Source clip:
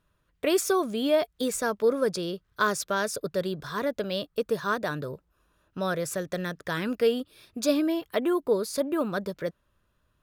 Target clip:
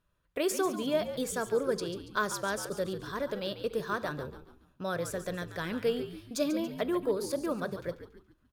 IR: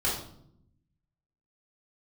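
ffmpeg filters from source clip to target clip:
-filter_complex "[0:a]atempo=1.2,asplit=5[s0][s1][s2][s3][s4];[s1]adelay=141,afreqshift=-70,volume=0.282[s5];[s2]adelay=282,afreqshift=-140,volume=0.119[s6];[s3]adelay=423,afreqshift=-210,volume=0.0495[s7];[s4]adelay=564,afreqshift=-280,volume=0.0209[s8];[s0][s5][s6][s7][s8]amix=inputs=5:normalize=0,asplit=2[s9][s10];[1:a]atrim=start_sample=2205,atrim=end_sample=6174[s11];[s10][s11]afir=irnorm=-1:irlink=0,volume=0.0596[s12];[s9][s12]amix=inputs=2:normalize=0,volume=0.531"

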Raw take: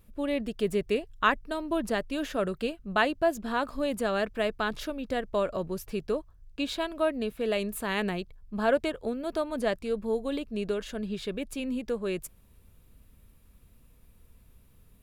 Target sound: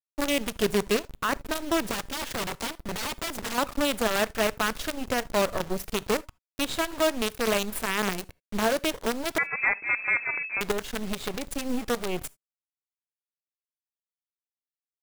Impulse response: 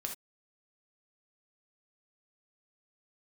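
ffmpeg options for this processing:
-filter_complex "[0:a]agate=range=0.178:threshold=0.00631:ratio=16:detection=peak,acrusher=bits=5:dc=4:mix=0:aa=0.000001,alimiter=limit=0.0631:level=0:latency=1:release=121,asettb=1/sr,asplit=3[s0][s1][s2];[s0]atrim=end=1.914[s3];[s1]atrim=start=1.91:end=3.58,asetpts=PTS-STARTPTS,afade=t=in:d=0.004:c=qsin,afade=t=out:st=1.666:d=0.004:c=qsin,aeval=exprs='(mod(47.3*val(0)+1,2)-1)/47.3':c=same[s4];[s2]atrim=start=3.576[s5];[s3][s4]acrossfade=d=0.004:c1=hsin:c2=qsin[s6];[s6][s5]acrossfade=d=0.004:c1=qsin:c2=hsin,asettb=1/sr,asplit=3[s7][s8][s9];[s7]atrim=end=9.384[s10];[s8]atrim=start=9.38:end=10.61,asetpts=PTS-STARTPTS,afade=t=in:d=0.004:c=qsin,afade=t=out:st=1.226:d=0.004:c=qsin,lowpass=f=2200:t=q:w=0.5098,lowpass=f=2200:t=q:w=0.6013,lowpass=f=2200:t=q:w=0.9,lowpass=f=2200:t=q:w=2.563,afreqshift=-2600[s11];[s9]atrim=start=10.606[s12];[s10][s11]acrossfade=d=0.004:c1=hsin:c2=qsin[s13];[s13][s12]acrossfade=d=0.004:c1=qsin:c2=hsin,asplit=2[s14][s15];[1:a]atrim=start_sample=2205[s16];[s15][s16]afir=irnorm=-1:irlink=0,volume=0.15[s17];[s14][s17]amix=inputs=2:normalize=0,volume=2.37"

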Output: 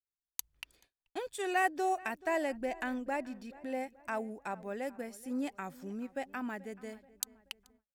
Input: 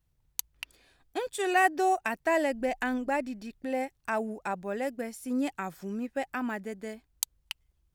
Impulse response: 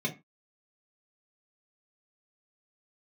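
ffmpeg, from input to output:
-filter_complex "[0:a]asplit=2[s0][s1];[s1]adelay=431,lowpass=f=2600:p=1,volume=0.1,asplit=2[s2][s3];[s3]adelay=431,lowpass=f=2600:p=1,volume=0.49,asplit=2[s4][s5];[s5]adelay=431,lowpass=f=2600:p=1,volume=0.49,asplit=2[s6][s7];[s7]adelay=431,lowpass=f=2600:p=1,volume=0.49[s8];[s0][s2][s4][s6][s8]amix=inputs=5:normalize=0,agate=range=0.02:threshold=0.00126:ratio=16:detection=peak,volume=0.501"

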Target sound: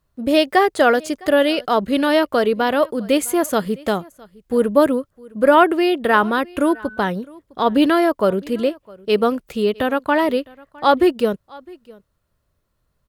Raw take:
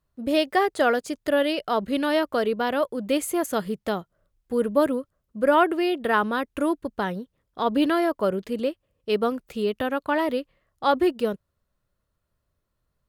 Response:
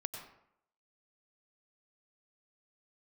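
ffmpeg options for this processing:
-filter_complex "[0:a]aecho=1:1:659:0.0631,asettb=1/sr,asplit=3[s0][s1][s2];[s0]atrim=end=6.624[s3];[s1]atrim=start=6.62:end=7.08,asetpts=PTS-STARTPTS,afade=t=in:d=0.004:c=qsin,afade=t=out:st=0.456:d=0.004:c=qsin,aeval=exprs='val(0)+0.00708*sin(2*PI*1500*n/s)':c=same[s4];[s2]atrim=start=7.076[s5];[s3][s4]acrossfade=d=0.004:c1=hsin:c2=qsin[s6];[s6][s5]acrossfade=d=0.004:c1=qsin:c2=hsin,volume=2.11"

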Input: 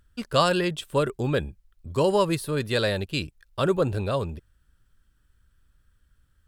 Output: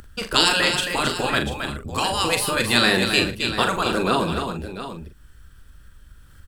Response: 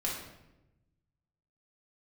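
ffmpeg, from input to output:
-filter_complex "[0:a]afftfilt=real='re*lt(hypot(re,im),0.224)':imag='im*lt(hypot(re,im),0.224)':win_size=1024:overlap=0.75,asplit=2[s0][s1];[s1]aecho=0:1:83|268|691:0.119|0.447|0.251[s2];[s0][s2]amix=inputs=2:normalize=0,acompressor=mode=upward:threshold=0.00316:ratio=2.5,acrossover=split=200[s3][s4];[s3]alimiter=level_in=5.62:limit=0.0631:level=0:latency=1:release=45,volume=0.178[s5];[s5][s4]amix=inputs=2:normalize=0,acontrast=27,asplit=2[s6][s7];[s7]adelay=42,volume=0.422[s8];[s6][s8]amix=inputs=2:normalize=0,adynamicequalizer=threshold=0.01:dfrequency=3400:dqfactor=5.4:tfrequency=3400:tqfactor=5.4:attack=5:release=100:ratio=0.375:range=2.5:mode=cutabove:tftype=bell,volume=2"

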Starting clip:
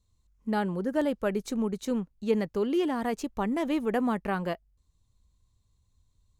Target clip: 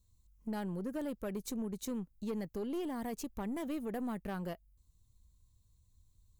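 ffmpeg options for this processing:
-af "lowshelf=f=290:g=8.5,acompressor=threshold=0.0282:ratio=2,aeval=exprs='(tanh(17.8*val(0)+0.3)-tanh(0.3))/17.8':c=same,aemphasis=mode=production:type=50fm,volume=0.501"

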